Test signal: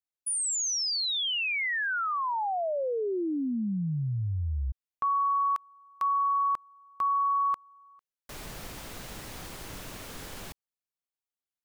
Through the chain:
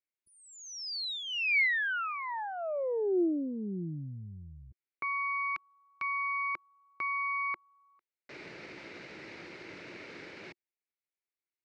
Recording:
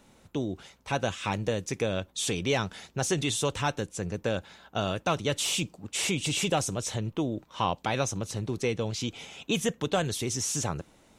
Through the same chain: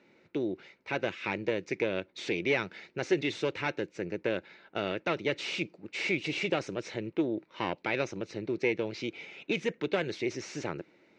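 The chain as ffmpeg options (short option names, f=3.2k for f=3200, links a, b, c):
-af "aeval=exprs='0.188*(cos(1*acos(clip(val(0)/0.188,-1,1)))-cos(1*PI/2))+0.0266*(cos(4*acos(clip(val(0)/0.188,-1,1)))-cos(4*PI/2))+0.00106*(cos(8*acos(clip(val(0)/0.188,-1,1)))-cos(8*PI/2))':c=same,highpass=210,equalizer=f=240:t=q:w=4:g=-4,equalizer=f=350:t=q:w=4:g=7,equalizer=f=750:t=q:w=4:g=-7,equalizer=f=1.1k:t=q:w=4:g=-8,equalizer=f=2.2k:t=q:w=4:g=8,equalizer=f=3.3k:t=q:w=4:g=-9,lowpass=f=4.3k:w=0.5412,lowpass=f=4.3k:w=1.3066,volume=-2dB"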